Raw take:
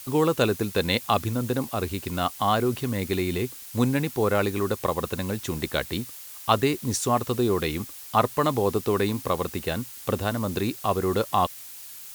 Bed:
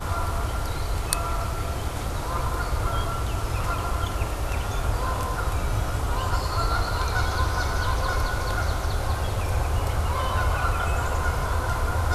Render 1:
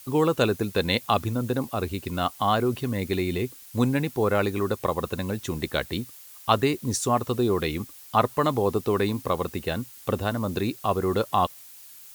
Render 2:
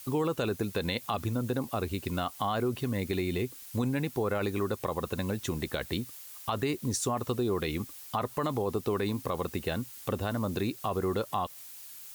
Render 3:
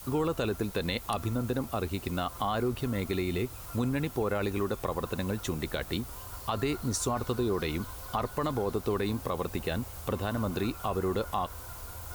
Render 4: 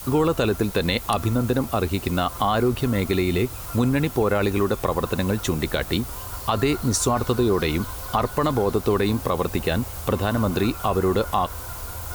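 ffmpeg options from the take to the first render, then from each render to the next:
ffmpeg -i in.wav -af "afftdn=noise_reduction=6:noise_floor=-42" out.wav
ffmpeg -i in.wav -af "alimiter=limit=-15.5dB:level=0:latency=1:release=26,acompressor=threshold=-30dB:ratio=2" out.wav
ffmpeg -i in.wav -i bed.wav -filter_complex "[1:a]volume=-20dB[link_01];[0:a][link_01]amix=inputs=2:normalize=0" out.wav
ffmpeg -i in.wav -af "volume=9dB" out.wav

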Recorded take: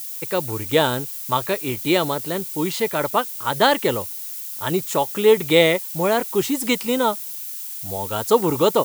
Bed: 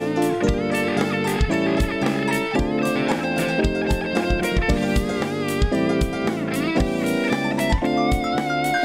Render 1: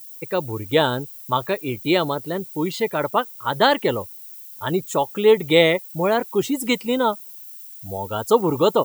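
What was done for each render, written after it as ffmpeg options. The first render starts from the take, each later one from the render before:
ffmpeg -i in.wav -af "afftdn=noise_reduction=13:noise_floor=-32" out.wav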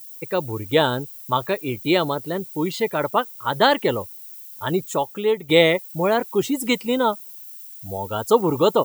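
ffmpeg -i in.wav -filter_complex "[0:a]asplit=2[link_01][link_02];[link_01]atrim=end=5.49,asetpts=PTS-STARTPTS,afade=type=out:start_time=4.82:duration=0.67:silence=0.298538[link_03];[link_02]atrim=start=5.49,asetpts=PTS-STARTPTS,afade=type=in:duration=0.004:curve=hsin:silence=0.298538[link_04];[link_03][link_04]concat=n=2:v=0:a=1" out.wav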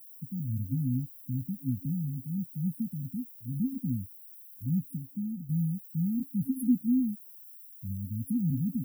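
ffmpeg -i in.wav -af "afftfilt=real='re*(1-between(b*sr/4096,270,9300))':imag='im*(1-between(b*sr/4096,270,9300))':win_size=4096:overlap=0.75,highshelf=frequency=4900:gain=-10.5" out.wav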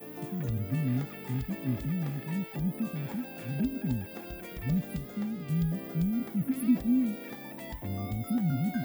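ffmpeg -i in.wav -i bed.wav -filter_complex "[1:a]volume=-21.5dB[link_01];[0:a][link_01]amix=inputs=2:normalize=0" out.wav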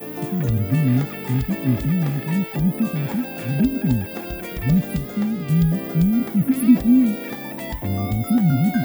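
ffmpeg -i in.wav -af "volume=11.5dB" out.wav

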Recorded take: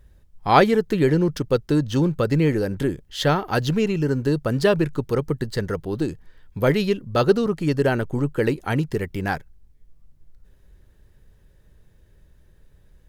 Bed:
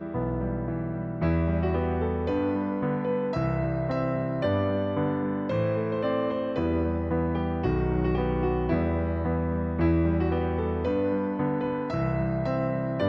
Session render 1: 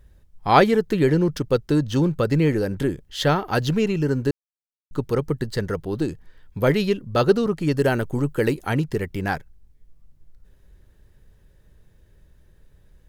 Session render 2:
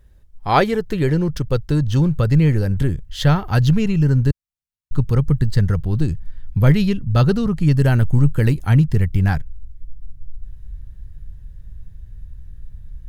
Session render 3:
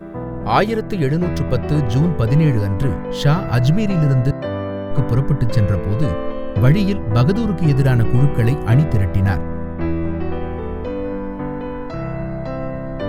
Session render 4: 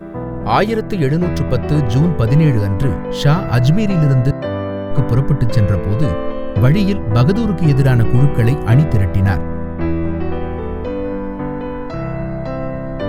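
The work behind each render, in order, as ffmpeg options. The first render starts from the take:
ffmpeg -i in.wav -filter_complex "[0:a]asettb=1/sr,asplit=3[link_01][link_02][link_03];[link_01]atrim=end=7.774[link_04];[link_02]atrim=start=7.77:end=8.7,asetpts=PTS-STARTPTS,afade=type=in:duration=0.004:curve=qsin,afade=type=out:start_time=0.926:duration=0.004:curve=qsin,highshelf=frequency=7000:gain=8[link_05];[link_03]atrim=start=8.696[link_06];[link_04][link_05]acrossfade=duration=0.004:curve1=hsin:curve2=qsin[link_07];[link_07][link_06]acrossfade=duration=0.004:curve1=qsin:curve2=hsin,asplit=3[link_08][link_09][link_10];[link_08]atrim=end=4.31,asetpts=PTS-STARTPTS,afade=type=out:start_time=4.306:duration=0.004:curve=hsin[link_11];[link_09]atrim=start=4.31:end=4.91,asetpts=PTS-STARTPTS,volume=0[link_12];[link_10]atrim=start=4.91,asetpts=PTS-STARTPTS,afade=type=in:duration=0.004:curve=hsin[link_13];[link_11][link_12][link_13]concat=n=3:v=0:a=1" out.wav
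ffmpeg -i in.wav -af "asubboost=boost=10.5:cutoff=120" out.wav
ffmpeg -i in.wav -i bed.wav -filter_complex "[1:a]volume=1.5dB[link_01];[0:a][link_01]amix=inputs=2:normalize=0" out.wav
ffmpeg -i in.wav -af "volume=2.5dB,alimiter=limit=-2dB:level=0:latency=1" out.wav

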